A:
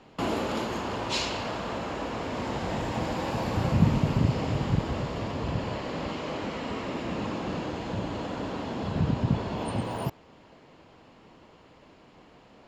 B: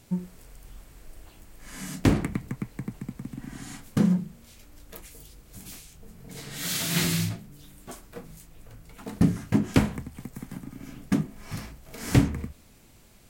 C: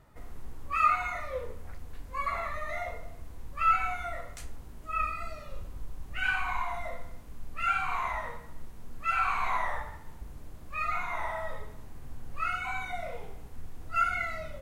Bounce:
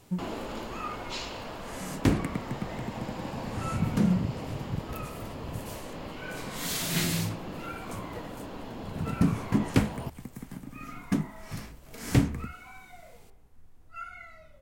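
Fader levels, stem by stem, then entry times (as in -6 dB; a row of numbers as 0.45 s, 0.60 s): -7.5 dB, -3.0 dB, -14.0 dB; 0.00 s, 0.00 s, 0.00 s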